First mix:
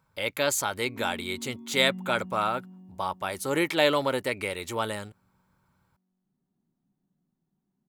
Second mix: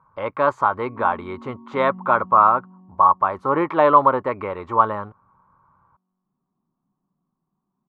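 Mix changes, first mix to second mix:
speech +4.0 dB; master: add synth low-pass 1100 Hz, resonance Q 7.4

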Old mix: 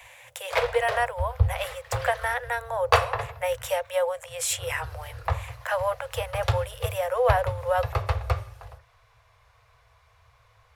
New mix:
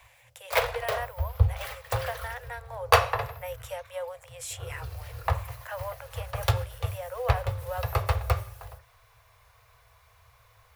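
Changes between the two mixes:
speech -10.5 dB; background: remove air absorption 53 m

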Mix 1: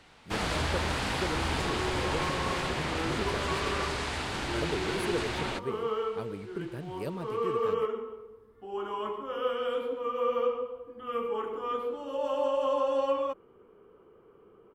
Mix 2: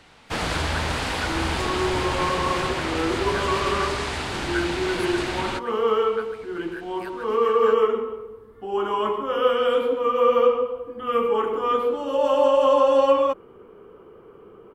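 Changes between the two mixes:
speech: add resonant high-pass 1500 Hz, resonance Q 8.9; first sound +5.0 dB; second sound +10.5 dB

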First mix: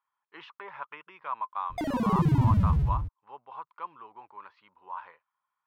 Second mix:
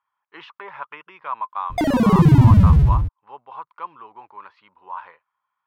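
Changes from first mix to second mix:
speech +6.0 dB; background +11.5 dB

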